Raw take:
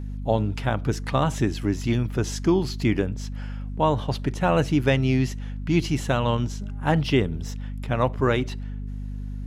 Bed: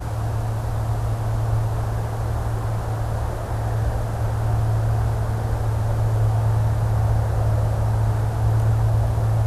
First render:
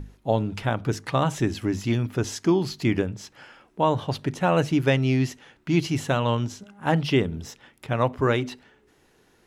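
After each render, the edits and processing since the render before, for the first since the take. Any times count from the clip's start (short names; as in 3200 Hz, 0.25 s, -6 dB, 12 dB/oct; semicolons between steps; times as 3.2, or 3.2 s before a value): notches 50/100/150/200/250 Hz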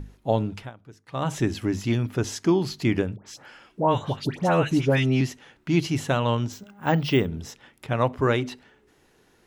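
0.45–1.34 dip -21.5 dB, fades 0.27 s; 3.16–5.21 dispersion highs, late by 0.101 s, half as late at 1500 Hz; 6.52–7.27 careless resampling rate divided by 2×, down filtered, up hold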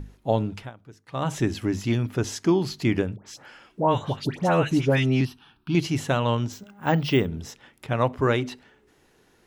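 5.25–5.75 fixed phaser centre 2000 Hz, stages 6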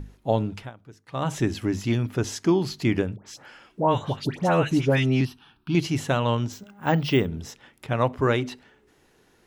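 nothing audible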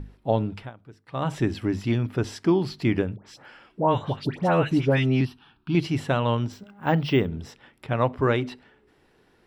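high shelf 6600 Hz -11 dB; notch 6500 Hz, Q 5.1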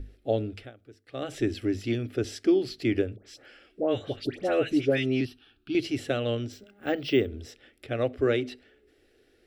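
fixed phaser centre 400 Hz, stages 4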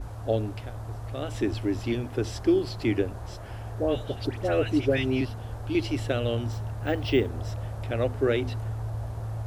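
add bed -13.5 dB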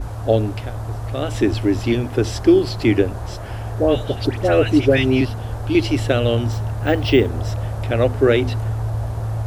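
gain +9.5 dB; limiter -3 dBFS, peak gain reduction 1.5 dB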